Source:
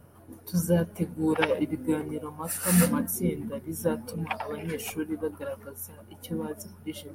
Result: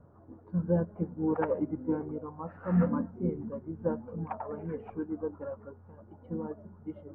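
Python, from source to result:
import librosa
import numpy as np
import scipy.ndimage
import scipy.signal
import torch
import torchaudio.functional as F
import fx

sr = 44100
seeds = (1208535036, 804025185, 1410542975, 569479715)

y = scipy.signal.sosfilt(scipy.signal.butter(4, 1300.0, 'lowpass', fs=sr, output='sos'), x)
y = y * librosa.db_to_amplitude(-3.5)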